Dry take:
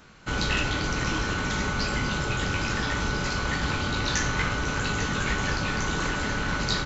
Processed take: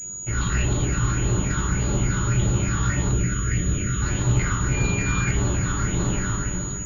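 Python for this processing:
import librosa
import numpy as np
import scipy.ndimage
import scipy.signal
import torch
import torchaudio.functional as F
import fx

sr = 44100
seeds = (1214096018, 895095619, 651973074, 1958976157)

y = fx.fade_out_tail(x, sr, length_s=0.67)
y = fx.phaser_stages(y, sr, stages=6, low_hz=570.0, high_hz=2100.0, hz=1.7, feedback_pct=45)
y = fx.echo_feedback(y, sr, ms=334, feedback_pct=59, wet_db=-11)
y = np.clip(y, -10.0 ** (-22.0 / 20.0), 10.0 ** (-22.0 / 20.0))
y = fx.fixed_phaser(y, sr, hz=2200.0, stages=4, at=(3.11, 4.02))
y = fx.dmg_tone(y, sr, hz=2400.0, level_db=-36.0, at=(4.72, 5.27), fade=0.02)
y = fx.rev_fdn(y, sr, rt60_s=0.54, lf_ratio=1.45, hf_ratio=0.55, size_ms=49.0, drr_db=0.0)
y = fx.pwm(y, sr, carrier_hz=6800.0)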